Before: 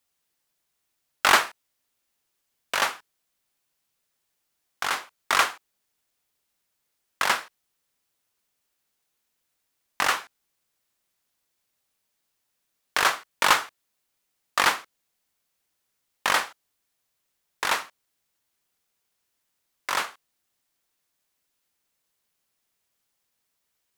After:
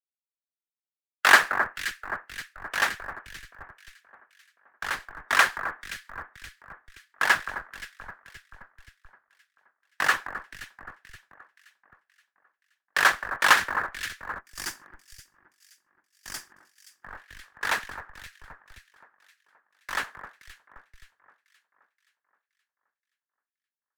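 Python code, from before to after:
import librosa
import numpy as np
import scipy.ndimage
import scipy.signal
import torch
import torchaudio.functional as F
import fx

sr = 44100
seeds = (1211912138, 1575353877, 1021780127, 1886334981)

p1 = fx.hpss(x, sr, part='harmonic', gain_db=-12)
p2 = fx.peak_eq(p1, sr, hz=1700.0, db=10.5, octaves=0.35)
p3 = p2 + fx.echo_alternate(p2, sr, ms=262, hz=1700.0, feedback_pct=82, wet_db=-5.5, dry=0)
p4 = fx.spec_box(p3, sr, start_s=14.4, length_s=2.64, low_hz=400.0, high_hz=4500.0, gain_db=-12)
p5 = fx.schmitt(p4, sr, flips_db=-25.0)
p6 = p4 + F.gain(torch.from_numpy(p5), -9.0).numpy()
p7 = fx.band_widen(p6, sr, depth_pct=100)
y = F.gain(torch.from_numpy(p7), -9.0).numpy()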